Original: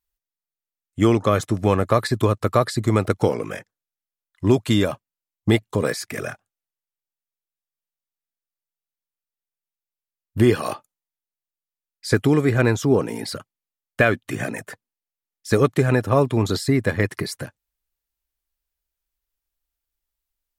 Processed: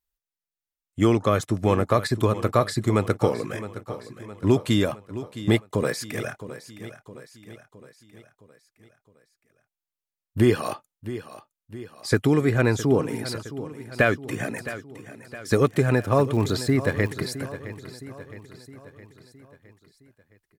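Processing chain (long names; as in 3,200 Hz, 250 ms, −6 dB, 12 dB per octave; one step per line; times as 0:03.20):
0:15.65–0:17.12: surface crackle 54 per second −29 dBFS
repeating echo 664 ms, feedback 53%, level −14 dB
level −2.5 dB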